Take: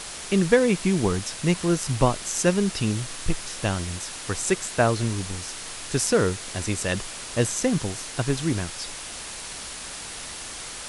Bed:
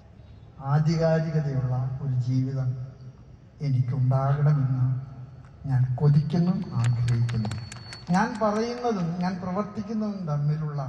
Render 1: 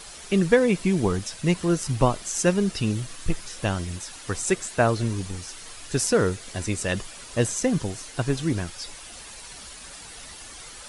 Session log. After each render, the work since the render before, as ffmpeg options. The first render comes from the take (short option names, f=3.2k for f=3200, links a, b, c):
-af "afftdn=nr=9:nf=-37"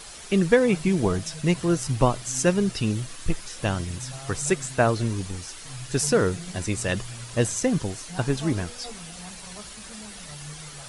-filter_complex "[1:a]volume=-16.5dB[a];[0:a][a]amix=inputs=2:normalize=0"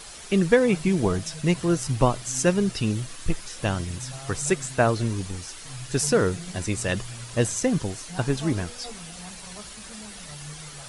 -af anull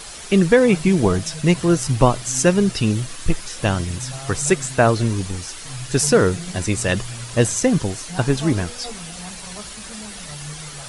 -af "volume=6dB,alimiter=limit=-2dB:level=0:latency=1"